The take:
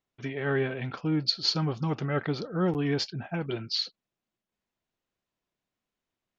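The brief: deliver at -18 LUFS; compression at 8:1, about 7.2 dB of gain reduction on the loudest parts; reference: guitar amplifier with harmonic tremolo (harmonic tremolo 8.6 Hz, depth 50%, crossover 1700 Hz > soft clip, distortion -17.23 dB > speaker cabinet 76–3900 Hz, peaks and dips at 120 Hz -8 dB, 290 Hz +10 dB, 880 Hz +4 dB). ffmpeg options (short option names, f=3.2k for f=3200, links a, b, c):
-filter_complex "[0:a]acompressor=threshold=-28dB:ratio=8,acrossover=split=1700[a][b];[a]aeval=exprs='val(0)*(1-0.5/2+0.5/2*cos(2*PI*8.6*n/s))':c=same[c];[b]aeval=exprs='val(0)*(1-0.5/2-0.5/2*cos(2*PI*8.6*n/s))':c=same[d];[c][d]amix=inputs=2:normalize=0,asoftclip=threshold=-28dB,highpass=76,equalizer=f=120:t=q:w=4:g=-8,equalizer=f=290:t=q:w=4:g=10,equalizer=f=880:t=q:w=4:g=4,lowpass=f=3.9k:w=0.5412,lowpass=f=3.9k:w=1.3066,volume=17dB"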